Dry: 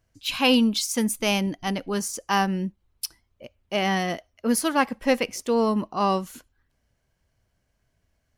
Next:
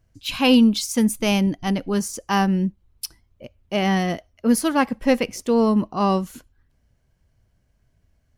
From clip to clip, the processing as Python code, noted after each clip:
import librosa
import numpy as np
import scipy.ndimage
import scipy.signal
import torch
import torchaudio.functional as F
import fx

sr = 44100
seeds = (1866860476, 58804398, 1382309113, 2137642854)

y = fx.low_shelf(x, sr, hz=310.0, db=9.0)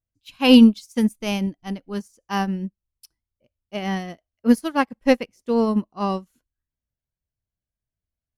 y = fx.upward_expand(x, sr, threshold_db=-32.0, expansion=2.5)
y = F.gain(torch.from_numpy(y), 5.0).numpy()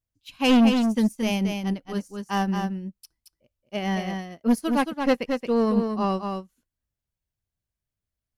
y = 10.0 ** (-14.0 / 20.0) * np.tanh(x / 10.0 ** (-14.0 / 20.0))
y = y + 10.0 ** (-5.5 / 20.0) * np.pad(y, (int(224 * sr / 1000.0), 0))[:len(y)]